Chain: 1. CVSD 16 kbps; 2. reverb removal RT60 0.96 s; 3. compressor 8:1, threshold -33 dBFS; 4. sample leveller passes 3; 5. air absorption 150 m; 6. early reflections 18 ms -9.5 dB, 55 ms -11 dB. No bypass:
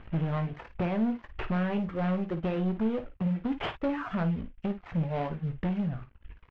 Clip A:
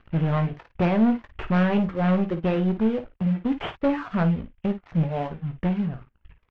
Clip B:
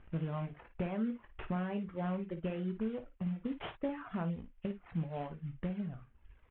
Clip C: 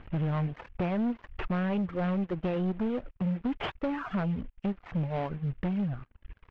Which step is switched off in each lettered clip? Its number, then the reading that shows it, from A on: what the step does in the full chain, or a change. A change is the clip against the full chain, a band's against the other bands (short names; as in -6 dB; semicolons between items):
3, mean gain reduction 4.0 dB; 4, crest factor change +5.0 dB; 6, echo-to-direct -7.0 dB to none